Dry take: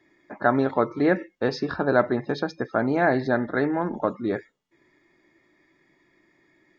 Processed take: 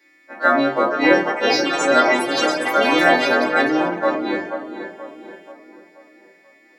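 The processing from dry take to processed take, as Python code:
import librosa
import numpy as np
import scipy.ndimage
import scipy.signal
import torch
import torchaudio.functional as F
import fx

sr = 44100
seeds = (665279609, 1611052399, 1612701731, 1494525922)

p1 = fx.freq_snap(x, sr, grid_st=2)
p2 = np.sign(p1) * np.maximum(np.abs(p1) - 10.0 ** (-36.0 / 20.0), 0.0)
p3 = p1 + F.gain(torch.from_numpy(p2), -12.0).numpy()
p4 = scipy.signal.sosfilt(scipy.signal.butter(2, 390.0, 'highpass', fs=sr, output='sos'), p3)
p5 = p4 + fx.echo_tape(p4, sr, ms=482, feedback_pct=51, wet_db=-8, lp_hz=1900.0, drive_db=2.0, wow_cents=25, dry=0)
p6 = fx.room_shoebox(p5, sr, seeds[0], volume_m3=380.0, walls='furnished', distance_m=2.3)
p7 = fx.echo_pitch(p6, sr, ms=719, semitones=6, count=3, db_per_echo=-6.0)
p8 = fx.peak_eq(p7, sr, hz=970.0, db=-3.0, octaves=0.85)
y = F.gain(torch.from_numpy(p8), 2.5).numpy()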